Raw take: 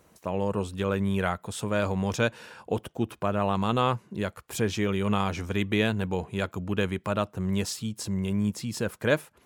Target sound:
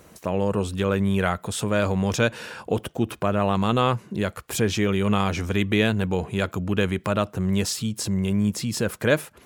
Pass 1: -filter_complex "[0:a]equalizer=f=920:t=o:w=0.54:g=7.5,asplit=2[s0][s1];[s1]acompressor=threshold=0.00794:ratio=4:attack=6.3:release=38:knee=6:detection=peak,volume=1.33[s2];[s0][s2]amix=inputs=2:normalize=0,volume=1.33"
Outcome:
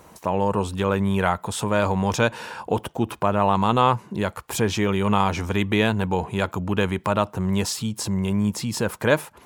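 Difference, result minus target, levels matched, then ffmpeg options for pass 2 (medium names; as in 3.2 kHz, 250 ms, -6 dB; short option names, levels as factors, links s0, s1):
1 kHz band +4.5 dB
-filter_complex "[0:a]equalizer=f=920:t=o:w=0.54:g=-3,asplit=2[s0][s1];[s1]acompressor=threshold=0.00794:ratio=4:attack=6.3:release=38:knee=6:detection=peak,volume=1.33[s2];[s0][s2]amix=inputs=2:normalize=0,volume=1.33"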